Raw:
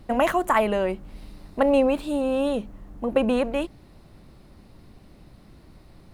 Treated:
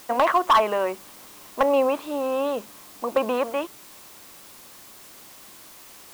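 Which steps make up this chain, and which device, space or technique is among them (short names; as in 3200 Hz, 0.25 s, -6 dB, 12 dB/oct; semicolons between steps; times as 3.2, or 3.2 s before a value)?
drive-through speaker (BPF 370–3600 Hz; bell 1100 Hz +10 dB 0.57 oct; hard clip -12 dBFS, distortion -14 dB; white noise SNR 21 dB)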